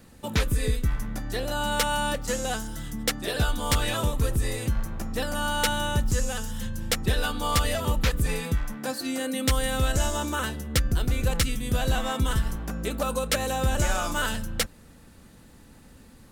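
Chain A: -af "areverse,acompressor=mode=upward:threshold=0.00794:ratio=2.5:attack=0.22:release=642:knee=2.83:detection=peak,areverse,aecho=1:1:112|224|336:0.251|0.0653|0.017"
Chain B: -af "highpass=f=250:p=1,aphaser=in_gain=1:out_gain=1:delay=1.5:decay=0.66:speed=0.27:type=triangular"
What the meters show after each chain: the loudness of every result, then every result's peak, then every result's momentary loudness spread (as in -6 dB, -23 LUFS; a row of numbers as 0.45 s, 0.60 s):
-27.5 LUFS, -27.0 LUFS; -13.0 dBFS, -6.5 dBFS; 6 LU, 9 LU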